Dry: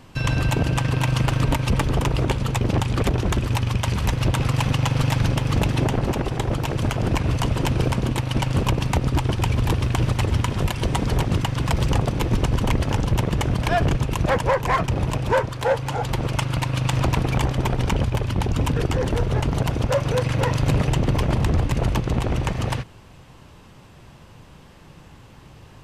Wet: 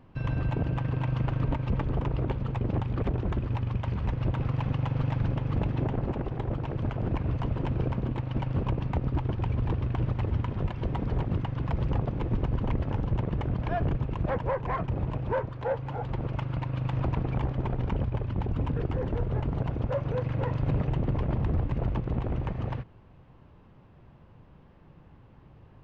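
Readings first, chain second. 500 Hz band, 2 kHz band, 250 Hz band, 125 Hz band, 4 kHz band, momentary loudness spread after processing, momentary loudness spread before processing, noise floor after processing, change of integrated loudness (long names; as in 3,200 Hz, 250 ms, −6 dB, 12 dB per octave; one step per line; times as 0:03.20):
−8.5 dB, −14.0 dB, −7.5 dB, −7.0 dB, −19.5 dB, 3 LU, 3 LU, −54 dBFS, −8.0 dB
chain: head-to-tape spacing loss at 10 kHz 40 dB
level −6.5 dB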